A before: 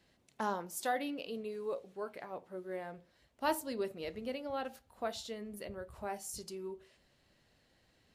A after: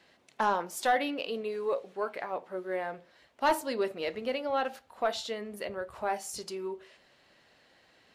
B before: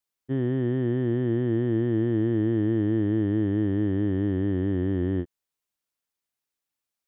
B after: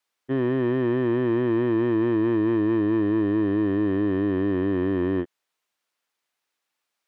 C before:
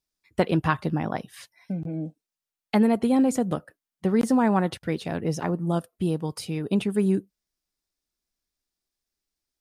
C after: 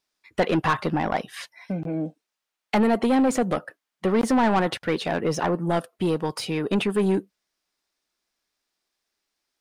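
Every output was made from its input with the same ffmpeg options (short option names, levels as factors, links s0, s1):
-filter_complex "[0:a]asplit=2[s0][s1];[s1]highpass=f=720:p=1,volume=12.6,asoftclip=type=tanh:threshold=0.398[s2];[s0][s2]amix=inputs=2:normalize=0,lowpass=f=2700:p=1,volume=0.501,volume=0.668"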